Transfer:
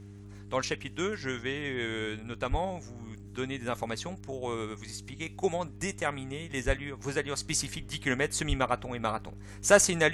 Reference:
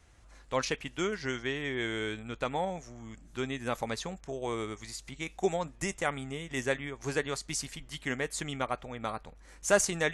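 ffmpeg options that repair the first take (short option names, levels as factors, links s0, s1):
-filter_complex "[0:a]adeclick=t=4,bandreject=f=100.6:t=h:w=4,bandreject=f=201.2:t=h:w=4,bandreject=f=301.8:t=h:w=4,bandreject=f=402.4:t=h:w=4,asplit=3[s0][s1][s2];[s0]afade=t=out:st=2.5:d=0.02[s3];[s1]highpass=f=140:w=0.5412,highpass=f=140:w=1.3066,afade=t=in:st=2.5:d=0.02,afade=t=out:st=2.62:d=0.02[s4];[s2]afade=t=in:st=2.62:d=0.02[s5];[s3][s4][s5]amix=inputs=3:normalize=0,asplit=3[s6][s7][s8];[s6]afade=t=out:st=6.66:d=0.02[s9];[s7]highpass=f=140:w=0.5412,highpass=f=140:w=1.3066,afade=t=in:st=6.66:d=0.02,afade=t=out:st=6.78:d=0.02[s10];[s8]afade=t=in:st=6.78:d=0.02[s11];[s9][s10][s11]amix=inputs=3:normalize=0,asplit=3[s12][s13][s14];[s12]afade=t=out:st=8.48:d=0.02[s15];[s13]highpass=f=140:w=0.5412,highpass=f=140:w=1.3066,afade=t=in:st=8.48:d=0.02,afade=t=out:st=8.6:d=0.02[s16];[s14]afade=t=in:st=8.6:d=0.02[s17];[s15][s16][s17]amix=inputs=3:normalize=0,asetnsamples=n=441:p=0,asendcmd='7.37 volume volume -4.5dB',volume=1"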